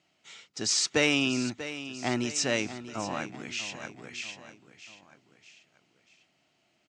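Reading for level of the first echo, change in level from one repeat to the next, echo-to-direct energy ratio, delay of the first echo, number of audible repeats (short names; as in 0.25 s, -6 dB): -13.0 dB, -6.0 dB, -12.0 dB, 0.64 s, 3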